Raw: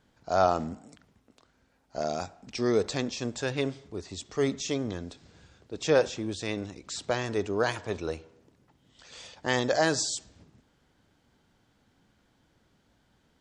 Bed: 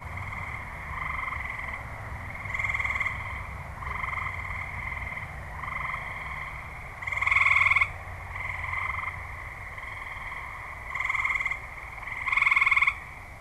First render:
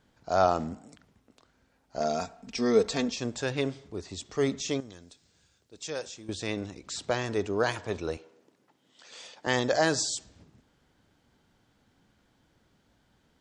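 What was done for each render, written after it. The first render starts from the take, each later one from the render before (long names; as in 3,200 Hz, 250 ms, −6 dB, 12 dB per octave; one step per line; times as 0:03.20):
0:02.00–0:03.16: comb filter 4.4 ms, depth 62%
0:04.80–0:06.29: first-order pre-emphasis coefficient 0.8
0:08.17–0:09.47: high-pass filter 260 Hz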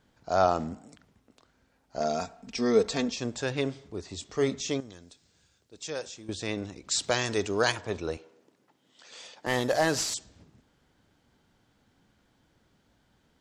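0:04.08–0:04.69: double-tracking delay 24 ms −12.5 dB
0:06.91–0:07.72: high-shelf EQ 2,400 Hz +11 dB
0:09.46–0:10.14: variable-slope delta modulation 64 kbit/s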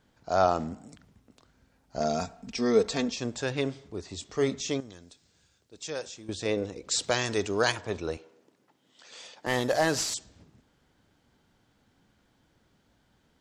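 0:00.79–0:02.52: bass and treble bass +6 dB, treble +2 dB
0:06.45–0:07.04: parametric band 480 Hz +13.5 dB 0.45 octaves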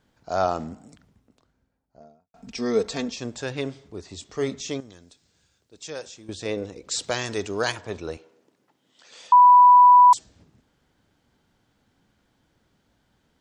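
0:00.81–0:02.34: fade out and dull
0:09.32–0:10.13: beep over 987 Hz −8.5 dBFS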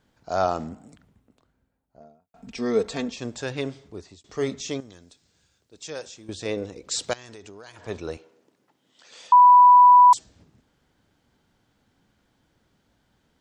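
0:00.69–0:03.22: parametric band 5,400 Hz −5.5 dB
0:03.82–0:04.24: fade out equal-power
0:07.13–0:07.87: downward compressor 16 to 1, threshold −39 dBFS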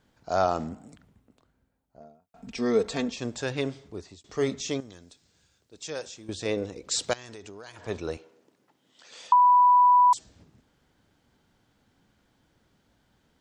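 downward compressor 4 to 1, threshold −17 dBFS, peak gain reduction 6 dB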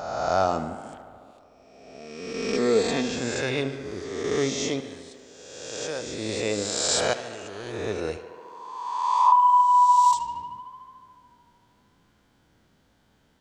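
peak hold with a rise ahead of every peak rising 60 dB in 1.60 s
tape delay 74 ms, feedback 84%, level −13 dB, low-pass 4,800 Hz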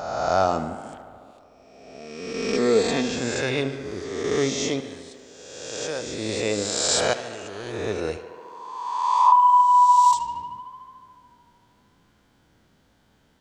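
level +2 dB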